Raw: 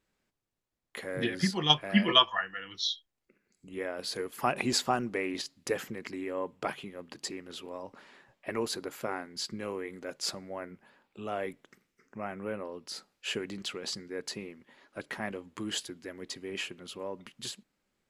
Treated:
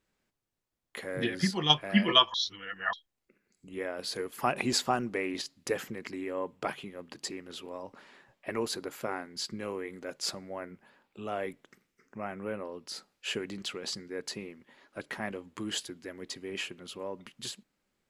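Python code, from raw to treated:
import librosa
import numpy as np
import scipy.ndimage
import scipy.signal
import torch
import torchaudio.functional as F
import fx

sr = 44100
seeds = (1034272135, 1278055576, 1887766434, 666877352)

y = fx.edit(x, sr, fx.reverse_span(start_s=2.34, length_s=0.59), tone=tone)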